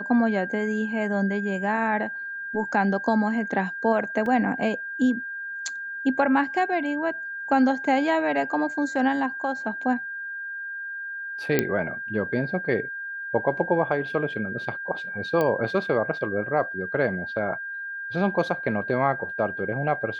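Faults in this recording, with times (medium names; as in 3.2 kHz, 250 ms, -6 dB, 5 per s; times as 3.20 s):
whine 1.6 kHz -31 dBFS
4.26 s: dropout 2.3 ms
11.59 s: pop -6 dBFS
15.41 s: pop -13 dBFS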